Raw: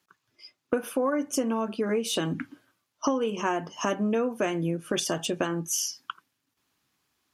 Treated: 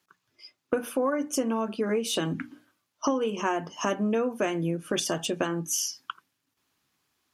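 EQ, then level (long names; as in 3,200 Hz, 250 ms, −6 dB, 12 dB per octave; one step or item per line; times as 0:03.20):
mains-hum notches 60/120/180/240/300 Hz
0.0 dB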